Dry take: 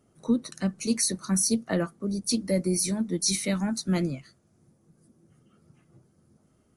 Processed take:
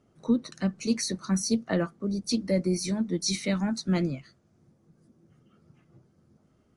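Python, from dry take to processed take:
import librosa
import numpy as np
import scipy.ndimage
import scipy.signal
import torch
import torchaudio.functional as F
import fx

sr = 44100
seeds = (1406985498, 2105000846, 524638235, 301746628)

y = scipy.signal.sosfilt(scipy.signal.butter(2, 5500.0, 'lowpass', fs=sr, output='sos'), x)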